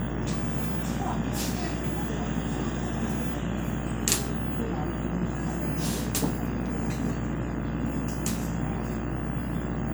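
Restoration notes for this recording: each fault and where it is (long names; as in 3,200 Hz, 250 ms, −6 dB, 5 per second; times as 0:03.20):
mains buzz 60 Hz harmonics 35 −34 dBFS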